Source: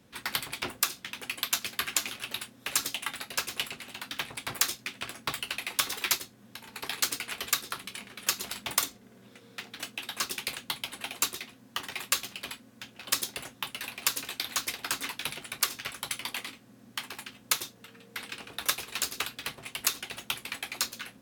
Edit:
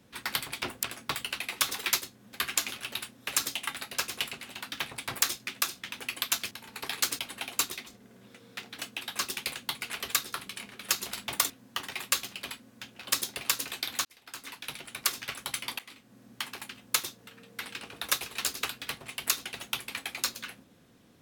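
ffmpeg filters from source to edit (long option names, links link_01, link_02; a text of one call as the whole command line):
ffmpeg -i in.wav -filter_complex "[0:a]asplit=12[link_01][link_02][link_03][link_04][link_05][link_06][link_07][link_08][link_09][link_10][link_11][link_12];[link_01]atrim=end=0.832[link_13];[link_02]atrim=start=5.008:end=6.512[link_14];[link_03]atrim=start=1.718:end=5.012[link_15];[link_04]atrim=start=0.828:end=1.722[link_16];[link_05]atrim=start=6.508:end=7.192[link_17];[link_06]atrim=start=10.818:end=11.502[link_18];[link_07]atrim=start=8.878:end=10.822[link_19];[link_08]atrim=start=7.188:end=8.882[link_20];[link_09]atrim=start=11.498:end=13.412[link_21];[link_10]atrim=start=13.978:end=14.62,asetpts=PTS-STARTPTS,afade=type=out:start_time=0.638:duration=0.004:curve=hsin[link_22];[link_11]atrim=start=14.62:end=16.36,asetpts=PTS-STARTPTS,afade=type=in:duration=1.1,afade=type=out:start_time=1.736:duration=0.004:curve=hsin:silence=0.133352[link_23];[link_12]atrim=start=16.36,asetpts=PTS-STARTPTS,afade=type=in:duration=0.4:silence=0.133352[link_24];[link_13][link_14]acrossfade=duration=0.004:curve1=hsin:curve2=hsin[link_25];[link_25][link_15]acrossfade=duration=0.004:curve1=hsin:curve2=hsin[link_26];[link_26][link_16]acrossfade=duration=0.004:curve1=hsin:curve2=hsin[link_27];[link_27][link_17]acrossfade=duration=0.004:curve1=hsin:curve2=hsin[link_28];[link_28][link_18]acrossfade=duration=0.004:curve1=hsin:curve2=hsin[link_29];[link_29][link_19]acrossfade=duration=0.004:curve1=hsin:curve2=hsin[link_30];[link_30][link_20]acrossfade=duration=0.004:curve1=hsin:curve2=hsin[link_31];[link_31][link_21]acrossfade=duration=0.004:curve1=hsin:curve2=hsin[link_32];[link_22][link_23][link_24]concat=n=3:v=0:a=1[link_33];[link_32][link_33]acrossfade=duration=0.004:curve1=hsin:curve2=hsin" out.wav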